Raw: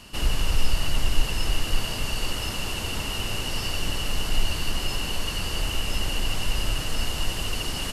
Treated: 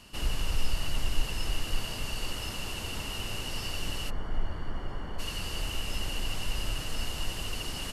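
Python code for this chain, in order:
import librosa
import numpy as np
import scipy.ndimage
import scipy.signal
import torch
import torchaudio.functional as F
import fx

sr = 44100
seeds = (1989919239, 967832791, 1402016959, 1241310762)

y = fx.savgol(x, sr, points=41, at=(4.09, 5.18), fade=0.02)
y = y * librosa.db_to_amplitude(-6.5)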